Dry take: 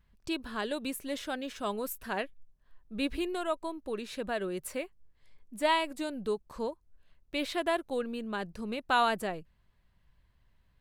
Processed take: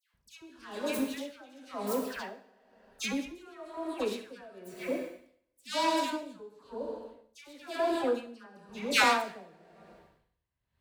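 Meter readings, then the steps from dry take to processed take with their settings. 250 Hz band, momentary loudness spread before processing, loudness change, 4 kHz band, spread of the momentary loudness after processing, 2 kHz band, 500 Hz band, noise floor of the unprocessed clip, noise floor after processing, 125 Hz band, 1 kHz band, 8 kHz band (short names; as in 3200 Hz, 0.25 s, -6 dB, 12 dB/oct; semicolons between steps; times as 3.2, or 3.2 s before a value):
-0.5 dB, 10 LU, +1.5 dB, +1.5 dB, 21 LU, +1.5 dB, -0.5 dB, -69 dBFS, -80 dBFS, n/a, -0.5 dB, +3.5 dB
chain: self-modulated delay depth 0.23 ms; HPF 66 Hz 12 dB/oct; dispersion lows, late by 0.141 s, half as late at 1400 Hz; vibrato 1.8 Hz 5.6 cents; plate-style reverb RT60 1.3 s, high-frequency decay 0.95×, DRR 3.5 dB; dB-linear tremolo 1 Hz, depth 22 dB; gain +4 dB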